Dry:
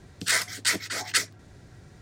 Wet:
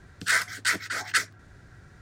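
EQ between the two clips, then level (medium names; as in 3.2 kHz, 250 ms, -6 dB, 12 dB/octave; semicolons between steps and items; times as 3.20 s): bass shelf 79 Hz +8 dB; peaking EQ 1.5 kHz +11 dB 0.83 oct; -4.5 dB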